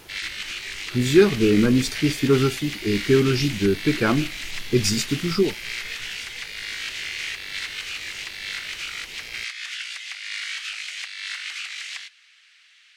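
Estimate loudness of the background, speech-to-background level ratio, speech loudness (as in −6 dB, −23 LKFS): −30.5 LKFS, 9.5 dB, −21.0 LKFS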